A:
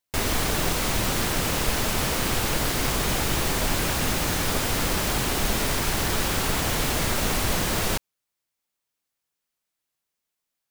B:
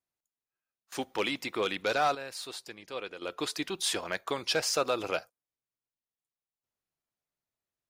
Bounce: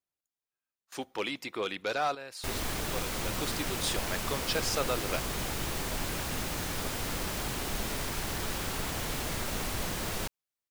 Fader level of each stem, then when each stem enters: -9.5, -3.0 dB; 2.30, 0.00 s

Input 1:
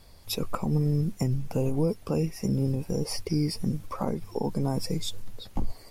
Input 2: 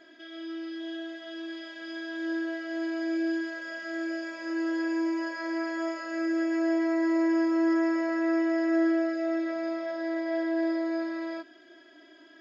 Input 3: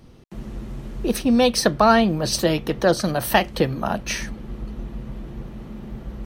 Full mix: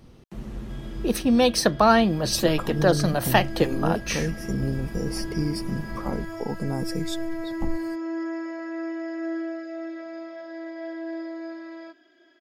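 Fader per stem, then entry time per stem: -1.0, -5.5, -2.0 dB; 2.05, 0.50, 0.00 s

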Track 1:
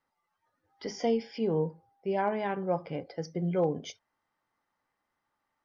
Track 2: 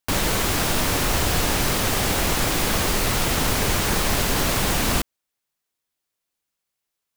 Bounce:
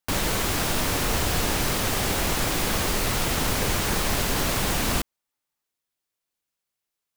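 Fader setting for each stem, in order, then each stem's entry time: -14.5, -3.0 dB; 0.00, 0.00 s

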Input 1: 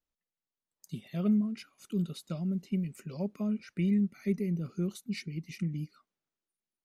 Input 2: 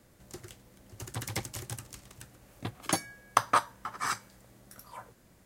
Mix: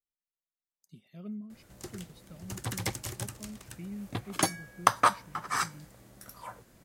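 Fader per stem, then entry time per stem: -13.5, +2.0 dB; 0.00, 1.50 s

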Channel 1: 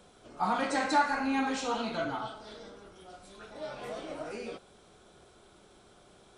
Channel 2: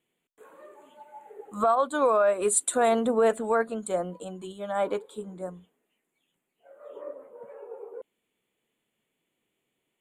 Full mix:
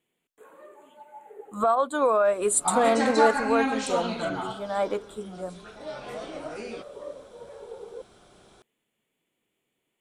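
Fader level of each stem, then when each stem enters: +3.0, +0.5 dB; 2.25, 0.00 s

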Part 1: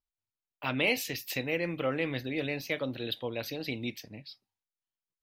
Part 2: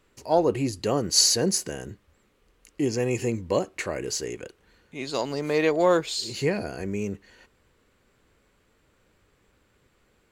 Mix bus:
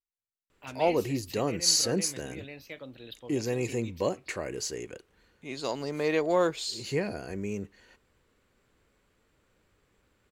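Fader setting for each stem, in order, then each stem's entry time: -10.5, -4.5 dB; 0.00, 0.50 s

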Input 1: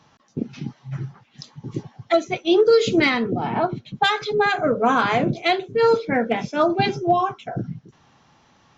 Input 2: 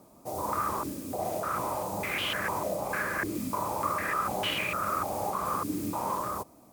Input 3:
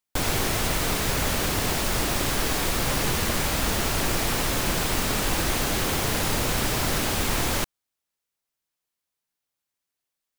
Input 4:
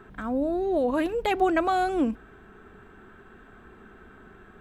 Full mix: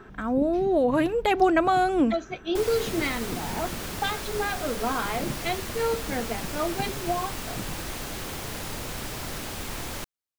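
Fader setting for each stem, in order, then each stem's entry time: -10.0 dB, off, -9.5 dB, +2.5 dB; 0.00 s, off, 2.40 s, 0.00 s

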